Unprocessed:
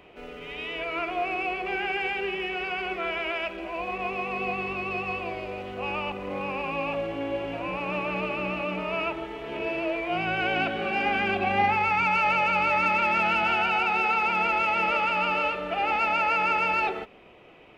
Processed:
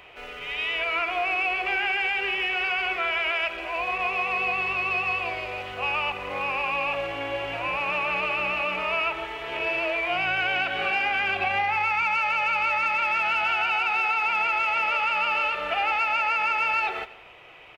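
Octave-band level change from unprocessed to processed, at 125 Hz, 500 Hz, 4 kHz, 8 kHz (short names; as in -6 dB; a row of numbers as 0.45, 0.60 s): -6.5 dB, -2.5 dB, +4.5 dB, n/a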